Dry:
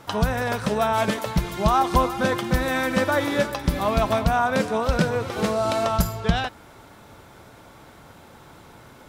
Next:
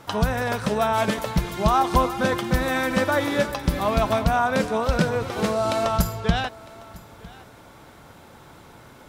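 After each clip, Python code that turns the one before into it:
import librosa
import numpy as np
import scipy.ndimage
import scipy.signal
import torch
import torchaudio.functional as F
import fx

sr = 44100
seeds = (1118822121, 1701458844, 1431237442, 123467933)

y = x + 10.0 ** (-22.0 / 20.0) * np.pad(x, (int(955 * sr / 1000.0), 0))[:len(x)]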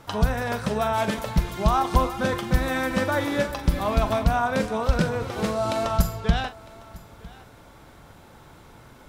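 y = fx.low_shelf(x, sr, hz=62.0, db=11.0)
y = fx.doubler(y, sr, ms=42.0, db=-12)
y = y * 10.0 ** (-3.0 / 20.0)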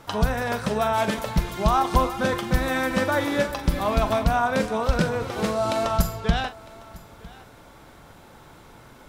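y = fx.peak_eq(x, sr, hz=76.0, db=-3.5, octaves=2.2)
y = y * 10.0 ** (1.5 / 20.0)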